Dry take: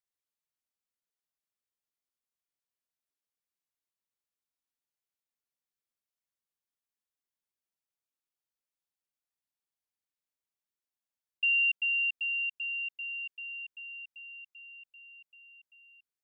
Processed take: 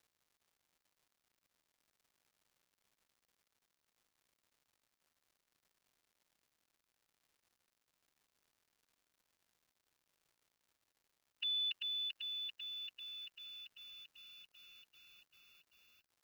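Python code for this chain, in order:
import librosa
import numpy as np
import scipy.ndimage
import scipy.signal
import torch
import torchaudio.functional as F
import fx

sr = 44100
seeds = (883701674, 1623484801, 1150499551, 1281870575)

y = fx.fixed_phaser(x, sr, hz=2600.0, stages=6)
y = fx.pitch_keep_formants(y, sr, semitones=4.0)
y = fx.dmg_crackle(y, sr, seeds[0], per_s=260.0, level_db=-67.0)
y = y * librosa.db_to_amplitude(3.5)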